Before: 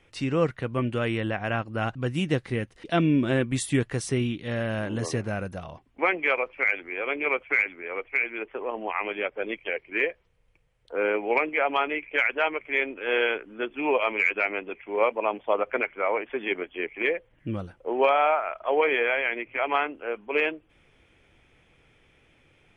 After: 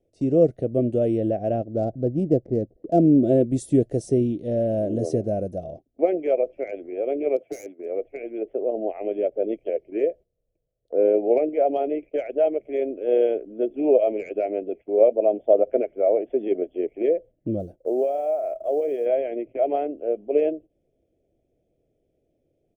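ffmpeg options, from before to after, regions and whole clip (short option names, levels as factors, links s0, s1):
-filter_complex "[0:a]asettb=1/sr,asplit=3[s0][s1][s2];[s0]atrim=end=1.644[s3];[s1]atrim=start=1.64:end=3.24,asetpts=PTS-STARTPTS,afade=t=in:d=0.004:c=qsin,afade=t=out:st=1.596:d=0.004:c=qsin,lowpass=f=1800:p=1,adynamicsmooth=sensitivity=4:basefreq=1000[s4];[s2]atrim=start=3.236[s5];[s3][s4]acrossfade=d=0.004:c1=hsin:c2=qsin[s6];[s6][s5]acrossfade=d=0.004:c1=qsin:c2=hsin,asettb=1/sr,asplit=3[s7][s8][s9];[s7]atrim=end=7.364[s10];[s8]atrim=start=7.36:end=7.86,asetpts=PTS-STARTPTS,afade=t=in:d=0.004:c=qsin,afade=t=out:st=0.496:d=0.004:c=qsin,highpass=170,asoftclip=type=hard:threshold=0.0473[s11];[s9]atrim=start=7.856[s12];[s10][s11]acrossfade=d=0.004:c1=hsin:c2=qsin[s13];[s13][s12]acrossfade=d=0.004:c1=qsin:c2=hsin,asettb=1/sr,asplit=3[s14][s15][s16];[s14]atrim=end=17.604[s17];[s15]atrim=start=17.6:end=19.06,asetpts=PTS-STARTPTS,afade=t=in:d=0.004:c=qsin,afade=t=out:st=1.456:d=0.004:c=qsin,acompressor=threshold=0.0501:ratio=4:attack=3.2:release=140:knee=1:detection=peak,acrusher=bits=7:mode=log:mix=0:aa=0.000001[s18];[s16]atrim=start=19.056[s19];[s17][s18]acrossfade=d=0.004:c1=hsin:c2=qsin[s20];[s20][s19]acrossfade=d=0.004:c1=qsin:c2=hsin,firequalizer=gain_entry='entry(460,0);entry(650,7);entry(960,-27);entry(5800,-7)':delay=0.05:min_phase=1,agate=range=0.251:threshold=0.00562:ratio=16:detection=peak,equalizer=f=370:t=o:w=1.4:g=8"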